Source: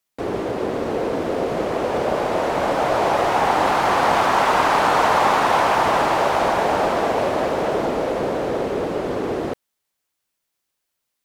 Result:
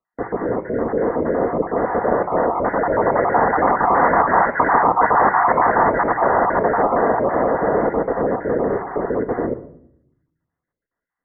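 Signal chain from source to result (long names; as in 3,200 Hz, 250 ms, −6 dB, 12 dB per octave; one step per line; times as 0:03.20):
time-frequency cells dropped at random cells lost 27%
Chebyshev low-pass filter 2,000 Hz, order 8
on a send at −9.5 dB: convolution reverb RT60 0.70 s, pre-delay 4 ms
on the sum: tape wow and flutter 26 cents
level +3.5 dB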